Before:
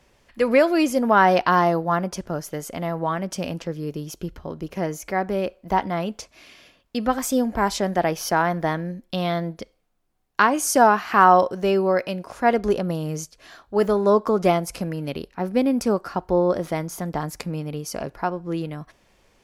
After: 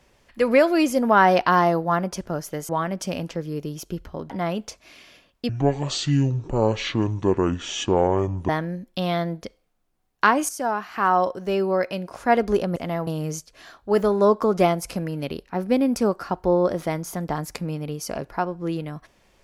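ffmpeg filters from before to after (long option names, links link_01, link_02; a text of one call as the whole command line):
ffmpeg -i in.wav -filter_complex "[0:a]asplit=8[link_01][link_02][link_03][link_04][link_05][link_06][link_07][link_08];[link_01]atrim=end=2.692[link_09];[link_02]atrim=start=2.998:end=4.612[link_10];[link_03]atrim=start=5.808:end=7.004[link_11];[link_04]atrim=start=7:end=8.65,asetpts=PTS-STARTPTS,asetrate=24255,aresample=44100[link_12];[link_05]atrim=start=8.646:end=10.65,asetpts=PTS-STARTPTS,afade=type=out:start_time=2:duration=0.004:curve=hsin:silence=0.237137[link_13];[link_06]atrim=start=10.65:end=12.922,asetpts=PTS-STARTPTS,afade=type=in:duration=1.69:silence=0.237137[link_14];[link_07]atrim=start=2.688:end=3.002[link_15];[link_08]atrim=start=12.918[link_16];[link_09][link_10]acrossfade=duration=0.004:curve1=hsin:curve2=hsin[link_17];[link_17][link_11]acrossfade=duration=0.004:curve1=hsin:curve2=hsin[link_18];[link_18][link_12]acrossfade=duration=0.004:curve1=hsin:curve2=hsin[link_19];[link_13][link_14]concat=n=2:v=0:a=1[link_20];[link_19][link_20]acrossfade=duration=0.004:curve1=hsin:curve2=hsin[link_21];[link_21][link_15]acrossfade=duration=0.004:curve1=hsin:curve2=hsin[link_22];[link_22][link_16]acrossfade=duration=0.004:curve1=hsin:curve2=hsin" out.wav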